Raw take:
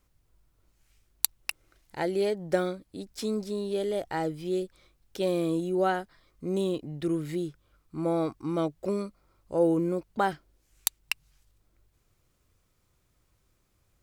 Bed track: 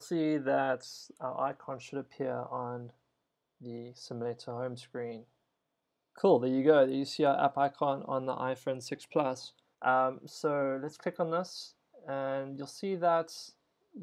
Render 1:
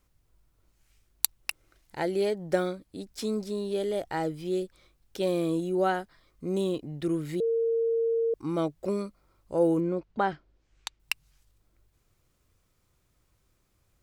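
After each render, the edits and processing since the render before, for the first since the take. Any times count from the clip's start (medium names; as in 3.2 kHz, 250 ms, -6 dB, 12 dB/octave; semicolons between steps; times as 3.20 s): 7.40–8.34 s: bleep 458 Hz -23 dBFS; 9.80–11.00 s: distance through air 140 m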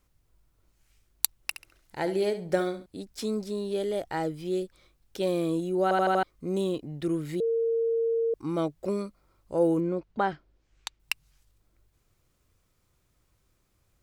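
1.35–2.86 s: flutter echo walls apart 11.8 m, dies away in 0.35 s; 5.83 s: stutter in place 0.08 s, 5 plays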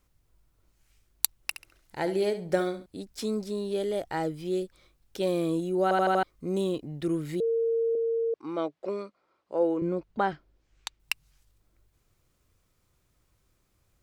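7.95–9.82 s: band-pass 350–3900 Hz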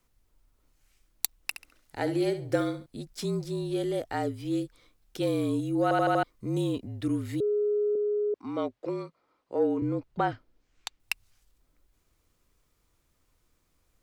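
saturation -11.5 dBFS, distortion -24 dB; frequency shift -42 Hz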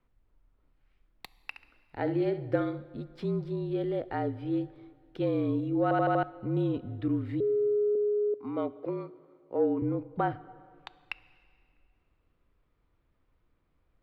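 distance through air 420 m; plate-style reverb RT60 2.3 s, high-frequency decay 0.85×, DRR 17 dB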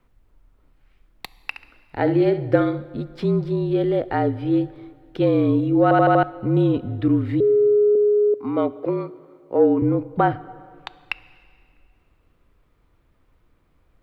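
trim +10.5 dB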